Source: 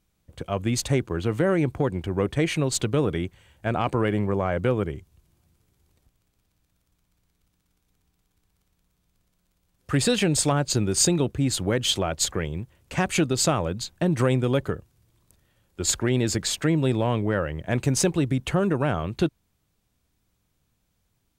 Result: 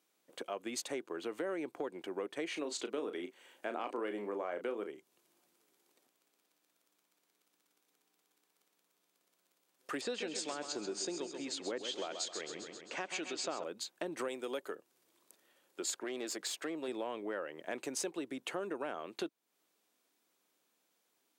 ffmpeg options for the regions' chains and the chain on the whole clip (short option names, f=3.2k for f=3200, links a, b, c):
-filter_complex "[0:a]asettb=1/sr,asplit=3[a][b][c];[a]atrim=end=2.484[d];[b]atrim=start=2.48:end=4.9,asetpts=PTS-STARTPTS,afade=t=in:d=0.004:c=qsin,afade=t=out:st=2.416:d=0.004:c=qsin,lowshelf=f=170:t=q:w=1.5:g=-8,asplit=2[e][f];[f]adelay=34,volume=-9dB[g];[e][g]amix=inputs=2:normalize=0,atrim=end_sample=106722,acrossover=split=7500[h][i];[i]acompressor=threshold=-53dB:ratio=4:attack=1:release=60[j];[h][j]amix=inputs=2:normalize=0[k];[c]atrim=start=4.896[l];[d][k]acrossfade=d=0.004:c1=hsin:c2=qsin[m];[m][l]acrossfade=d=0.004:c1=qsin:c2=hsin,asettb=1/sr,asplit=3[n][o][p];[n]atrim=end=10.014[q];[o]atrim=start=10.01:end=13.64,asetpts=PTS-STARTPTS,afade=t=in:d=0.004:c=qsin,afade=t=out:st=3.626:d=0.004:c=qsin,lowpass=f=6.9k:w=0.5412,lowpass=f=6.9k:w=1.3066,acrossover=split=1700[r][s];[r]aeval=exprs='val(0)*(1-0.5/2+0.5/2*cos(2*PI*1.1*n/s))':c=same[t];[s]aeval=exprs='val(0)*(1-0.5/2-0.5/2*cos(2*PI*1.1*n/s))':c=same[u];[t][u]amix=inputs=2:normalize=0,aecho=1:1:132|264|396|528|660|792:0.355|0.181|0.0923|0.0471|0.024|0.0122,atrim=end_sample=160083[v];[p]atrim=start=13.636[w];[q][v]acrossfade=d=0.004:c1=hsin:c2=qsin[x];[x][w]acrossfade=d=0.004:c1=qsin:c2=hsin,asettb=1/sr,asplit=3[y][z][aa];[y]atrim=end=14.284[ab];[z]atrim=start=14.28:end=14.75,asetpts=PTS-STARTPTS,afade=t=in:d=0.004:c=qsin,afade=t=out:st=0.466:d=0.004:c=qsin,highpass=f=270:p=1,highshelf=f=6.2k:g=8.5[ac];[aa]atrim=start=14.746[ad];[ab][ac]acrossfade=d=0.004:c1=hsin:c2=qsin[ae];[ae][ad]acrossfade=d=0.004:c1=qsin:c2=hsin,asettb=1/sr,asplit=3[af][ag][ah];[af]atrim=end=16.044[ai];[ag]atrim=start=16.04:end=16.88,asetpts=PTS-STARTPTS,afade=t=in:d=0.004:c=qsin,afade=t=out:st=0.836:d=0.004:c=qsin,highpass=f=200:p=1,aeval=exprs='(tanh(7.08*val(0)+0.4)-tanh(0.4))/7.08':c=same[aj];[ah]atrim=start=16.876[ak];[ai][aj]acrossfade=d=0.004:c1=hsin:c2=qsin[al];[al][ak]acrossfade=d=0.004:c1=qsin:c2=hsin,highpass=f=300:w=0.5412,highpass=f=300:w=1.3066,acompressor=threshold=-41dB:ratio=2.5,volume=-1dB"